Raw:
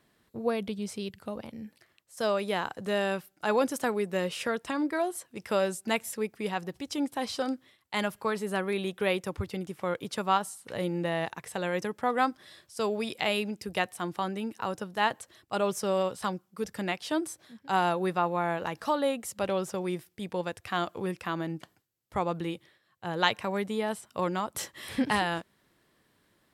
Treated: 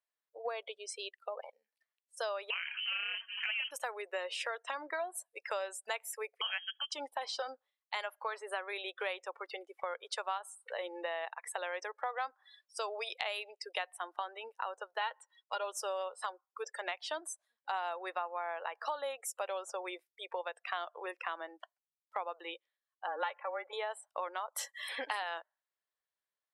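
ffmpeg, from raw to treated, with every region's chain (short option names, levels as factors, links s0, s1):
-filter_complex "[0:a]asettb=1/sr,asplit=3[s0][s1][s2];[s0]atrim=end=2.504[s3];[s1]atrim=start=2.5:end=3.71,asetpts=PTS-STARTPTS,afade=t=in:d=0.004:c=qsin,afade=t=out:st=1.206:d=0.004:c=qsin,aeval=exprs='val(0)+0.5*0.0282*sgn(val(0))':c=same,tremolo=f=230:d=0.788,lowpass=f=2700:t=q:w=0.5098,lowpass=f=2700:t=q:w=0.6013,lowpass=f=2700:t=q:w=0.9,lowpass=f=2700:t=q:w=2.563,afreqshift=-3200[s4];[s2]atrim=start=3.706[s5];[s3][s4]acrossfade=d=0.004:c1=hsin:c2=qsin[s6];[s6][s5]acrossfade=d=0.004:c1=qsin:c2=hsin,asettb=1/sr,asplit=3[s7][s8][s9];[s7]atrim=end=6.414[s10];[s8]atrim=start=6.41:end=6.92,asetpts=PTS-STARTPTS,afade=t=in:d=0.004:c=qsin,afade=t=out:st=0.506:d=0.004:c=qsin,equalizer=f=1800:t=o:w=0.9:g=8.5,lowpass=f=2900:t=q:w=0.5098,lowpass=f=2900:t=q:w=0.6013,lowpass=f=2900:t=q:w=0.9,lowpass=f=2900:t=q:w=2.563,afreqshift=-3400[s11];[s9]atrim=start=6.916[s12];[s10][s11]acrossfade=d=0.004:c1=hsin:c2=qsin[s13];[s13][s12]acrossfade=d=0.004:c1=qsin:c2=hsin,asettb=1/sr,asplit=3[s14][s15][s16];[s14]atrim=end=15.014[s17];[s15]atrim=start=15.01:end=15.64,asetpts=PTS-STARTPTS,afade=t=in:d=0.004:c=qsin,afade=t=out:st=0.626:d=0.004:c=qsin,lowpass=6800,lowshelf=f=440:g=-6.5,aecho=1:1:2.1:0.63,atrim=end_sample=27783[s18];[s16]atrim=start=15.636[s19];[s17][s18]acrossfade=d=0.004:c1=hsin:c2=qsin[s20];[s20][s19]acrossfade=d=0.004:c1=qsin:c2=hsin,asettb=1/sr,asplit=3[s21][s22][s23];[s21]atrim=end=23.074[s24];[s22]atrim=start=23.07:end=23.73,asetpts=PTS-STARTPTS,afade=t=in:d=0.004:c=qsin,afade=t=out:st=0.656:d=0.004:c=qsin,lowpass=2000,aecho=1:1:3.5:0.63,atrim=end_sample=29106,afreqshift=-20[s25];[s23]atrim=start=23.726[s26];[s24][s25]acrossfade=d=0.004:c1=hsin:c2=qsin[s27];[s27][s26]acrossfade=d=0.004:c1=qsin:c2=hsin,highpass=f=570:w=0.5412,highpass=f=570:w=1.3066,afftdn=nr=30:nf=-44,acompressor=threshold=0.01:ratio=4,volume=1.58"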